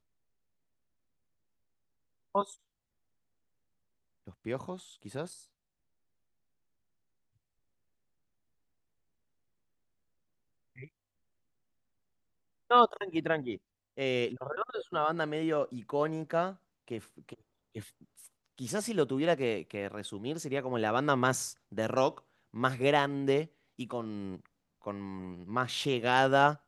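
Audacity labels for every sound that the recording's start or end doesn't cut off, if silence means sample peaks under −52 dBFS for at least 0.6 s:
2.350000	2.550000	sound
4.270000	5.440000	sound
10.760000	10.880000	sound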